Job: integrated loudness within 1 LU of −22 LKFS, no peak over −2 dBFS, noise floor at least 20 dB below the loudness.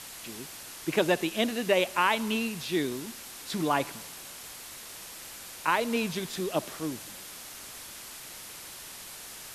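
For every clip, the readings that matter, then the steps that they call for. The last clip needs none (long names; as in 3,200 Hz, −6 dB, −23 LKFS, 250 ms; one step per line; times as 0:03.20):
background noise floor −44 dBFS; target noise floor −52 dBFS; integrated loudness −31.5 LKFS; sample peak −10.5 dBFS; target loudness −22.0 LKFS
→ noise reduction from a noise print 8 dB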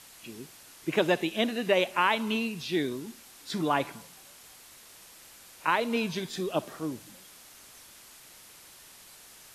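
background noise floor −52 dBFS; integrated loudness −29.0 LKFS; sample peak −11.0 dBFS; target loudness −22.0 LKFS
→ level +7 dB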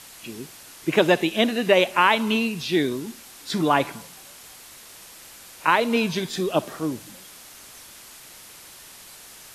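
integrated loudness −22.0 LKFS; sample peak −4.0 dBFS; background noise floor −45 dBFS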